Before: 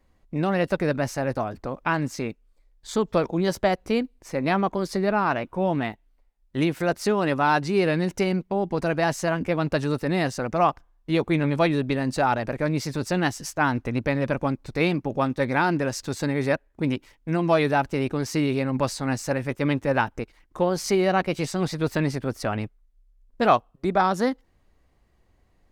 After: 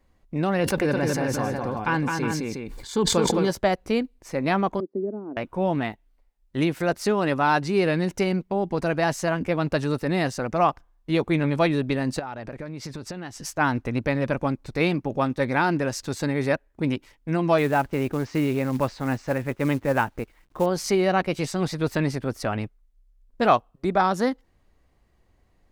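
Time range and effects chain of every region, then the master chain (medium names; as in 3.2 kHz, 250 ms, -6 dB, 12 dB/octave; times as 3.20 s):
0.60–3.51 s: comb of notches 640 Hz + multi-tap echo 212/362 ms -4/-10 dB + decay stretcher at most 26 dB/s
4.80–5.37 s: transient shaper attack +2 dB, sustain -8 dB + Butterworth band-pass 310 Hz, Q 1.7
12.19–13.45 s: treble shelf 9.3 kHz -11 dB + compression 10:1, threshold -30 dBFS
17.58–20.66 s: low-pass 2.8 kHz + companded quantiser 6-bit
whole clip: none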